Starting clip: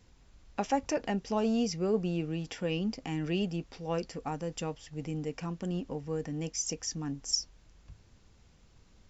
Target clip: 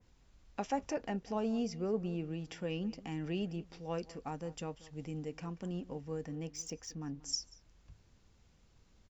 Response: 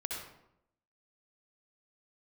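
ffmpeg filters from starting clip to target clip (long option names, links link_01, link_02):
-filter_complex "[0:a]asplit=2[link_01][link_02];[link_02]adelay=186.6,volume=-19dB,highshelf=frequency=4000:gain=-4.2[link_03];[link_01][link_03]amix=inputs=2:normalize=0,asettb=1/sr,asplit=3[link_04][link_05][link_06];[link_04]atrim=end=6.354[link_07];[link_05]atrim=start=6.35:end=7.23,asetpts=PTS-STARTPTS,afade=type=in:duration=0.004:curve=qsin,afade=type=out:start_time=0.876:duration=0.004:curve=qsin,adynamicsmooth=sensitivity=7:basefreq=5400[link_08];[link_06]atrim=start=7.226[link_09];[link_07][link_08]acrossfade=duration=0.004:curve1=hsin:curve2=qsin[link_10];[link_10][link_09]acrossfade=duration=0.004:curve1=qsin:curve2=hsin,adynamicequalizer=threshold=0.00316:dfrequency=2500:dqfactor=0.7:tfrequency=2500:tqfactor=0.7:attack=5:release=100:ratio=0.375:range=3:mode=cutabove:tftype=highshelf,volume=-5.5dB"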